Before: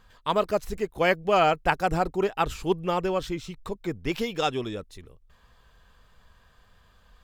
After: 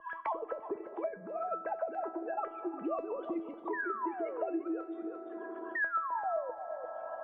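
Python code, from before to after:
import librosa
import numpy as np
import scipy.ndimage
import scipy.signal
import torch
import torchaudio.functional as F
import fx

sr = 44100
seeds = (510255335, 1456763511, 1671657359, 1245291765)

p1 = fx.sine_speech(x, sr)
p2 = fx.peak_eq(p1, sr, hz=450.0, db=3.5, octaves=0.43)
p3 = fx.over_compress(p2, sr, threshold_db=-27.0, ratio=-0.5)
p4 = fx.spec_paint(p3, sr, seeds[0], shape='fall', start_s=5.75, length_s=0.76, low_hz=490.0, high_hz=1900.0, level_db=-21.0)
p5 = fx.filter_lfo_lowpass(p4, sr, shape='saw_up', hz=7.7, low_hz=600.0, high_hz=1600.0, q=3.1)
p6 = fx.spec_paint(p5, sr, seeds[1], shape='fall', start_s=3.73, length_s=0.88, low_hz=290.0, high_hz=1900.0, level_db=-26.0)
p7 = fx.comb_fb(p6, sr, f0_hz=330.0, decay_s=0.3, harmonics='all', damping=0.0, mix_pct=90)
p8 = p7 + fx.echo_single(p7, sr, ms=347, db=-15.5, dry=0)
p9 = fx.rev_fdn(p8, sr, rt60_s=2.6, lf_ratio=1.25, hf_ratio=0.55, size_ms=24.0, drr_db=15.5)
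y = fx.band_squash(p9, sr, depth_pct=100)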